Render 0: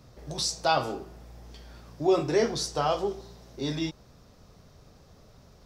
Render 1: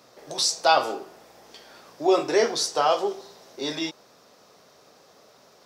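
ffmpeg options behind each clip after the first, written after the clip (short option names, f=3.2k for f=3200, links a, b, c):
-af "highpass=410,volume=6dB"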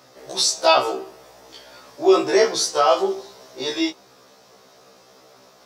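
-af "afftfilt=real='re*1.73*eq(mod(b,3),0)':imag='im*1.73*eq(mod(b,3),0)':win_size=2048:overlap=0.75,volume=6.5dB"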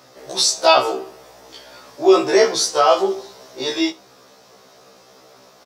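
-af "aecho=1:1:71:0.0708,volume=2.5dB"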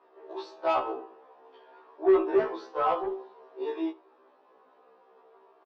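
-filter_complex "[0:a]highpass=f=300:w=0.5412,highpass=f=300:w=1.3066,equalizer=f=400:t=q:w=4:g=6,equalizer=f=570:t=q:w=4:g=-5,equalizer=f=970:t=q:w=4:g=6,equalizer=f=1.4k:t=q:w=4:g=-4,equalizer=f=2.1k:t=q:w=4:g=-10,lowpass=f=2.3k:w=0.5412,lowpass=f=2.3k:w=1.3066,asoftclip=type=tanh:threshold=-7dB,asplit=2[a][b];[b]adelay=10.7,afreqshift=0.55[c];[a][c]amix=inputs=2:normalize=1,volume=-7dB"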